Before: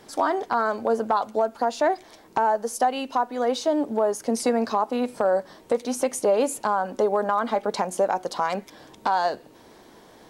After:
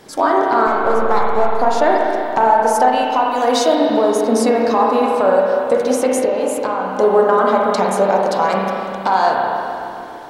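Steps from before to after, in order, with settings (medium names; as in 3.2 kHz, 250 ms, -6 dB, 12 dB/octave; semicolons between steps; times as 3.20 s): 0.67–1.60 s: partial rectifier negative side -7 dB; 3.31–3.75 s: treble shelf 2.9 kHz +8 dB; 6.07–6.94 s: compression, threshold -25 dBFS, peak gain reduction 8.5 dB; spring tank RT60 2.8 s, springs 31/47 ms, chirp 70 ms, DRR -2.5 dB; trim +5.5 dB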